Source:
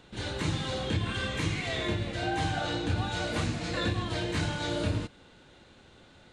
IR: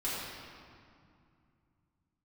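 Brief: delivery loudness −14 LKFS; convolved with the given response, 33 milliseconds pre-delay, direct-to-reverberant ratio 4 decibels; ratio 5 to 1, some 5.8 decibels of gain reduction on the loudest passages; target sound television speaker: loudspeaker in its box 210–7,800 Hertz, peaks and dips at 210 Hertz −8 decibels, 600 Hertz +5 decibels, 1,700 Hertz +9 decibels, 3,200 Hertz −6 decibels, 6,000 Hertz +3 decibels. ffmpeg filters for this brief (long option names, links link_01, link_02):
-filter_complex "[0:a]acompressor=threshold=-31dB:ratio=5,asplit=2[link_01][link_02];[1:a]atrim=start_sample=2205,adelay=33[link_03];[link_02][link_03]afir=irnorm=-1:irlink=0,volume=-10dB[link_04];[link_01][link_04]amix=inputs=2:normalize=0,highpass=frequency=210:width=0.5412,highpass=frequency=210:width=1.3066,equalizer=frequency=210:width_type=q:width=4:gain=-8,equalizer=frequency=600:width_type=q:width=4:gain=5,equalizer=frequency=1700:width_type=q:width=4:gain=9,equalizer=frequency=3200:width_type=q:width=4:gain=-6,equalizer=frequency=6000:width_type=q:width=4:gain=3,lowpass=frequency=7800:width=0.5412,lowpass=frequency=7800:width=1.3066,volume=19.5dB"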